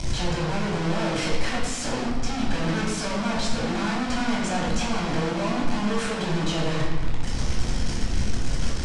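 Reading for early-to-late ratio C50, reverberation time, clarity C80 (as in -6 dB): 1.5 dB, 1.5 s, 4.0 dB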